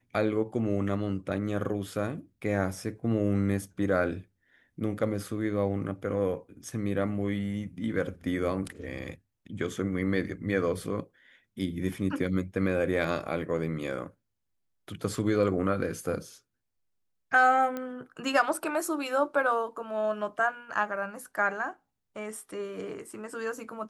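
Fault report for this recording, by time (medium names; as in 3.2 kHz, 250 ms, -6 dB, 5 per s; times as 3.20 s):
17.77 s: pop -21 dBFS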